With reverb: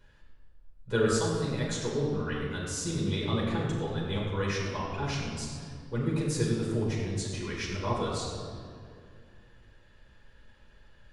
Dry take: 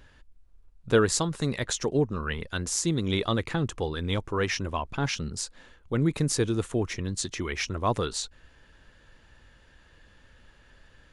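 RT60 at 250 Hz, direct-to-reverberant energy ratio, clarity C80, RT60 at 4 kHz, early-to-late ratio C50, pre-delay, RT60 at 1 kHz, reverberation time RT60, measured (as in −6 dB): 2.9 s, −5.5 dB, 2.0 dB, 1.4 s, 0.5 dB, 7 ms, 2.0 s, 2.2 s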